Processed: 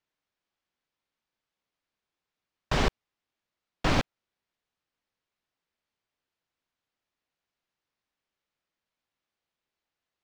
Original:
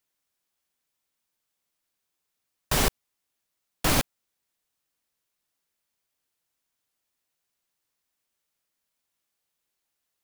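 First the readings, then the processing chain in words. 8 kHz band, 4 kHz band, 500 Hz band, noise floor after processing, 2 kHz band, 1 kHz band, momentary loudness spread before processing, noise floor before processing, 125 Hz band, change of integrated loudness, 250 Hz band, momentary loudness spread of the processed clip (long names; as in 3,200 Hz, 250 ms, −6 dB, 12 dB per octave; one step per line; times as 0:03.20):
−14.0 dB, −4.5 dB, −0.5 dB, below −85 dBFS, −1.5 dB, −0.5 dB, 5 LU, −82 dBFS, 0.0 dB, −3.5 dB, 0.0 dB, 5 LU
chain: high-frequency loss of the air 160 metres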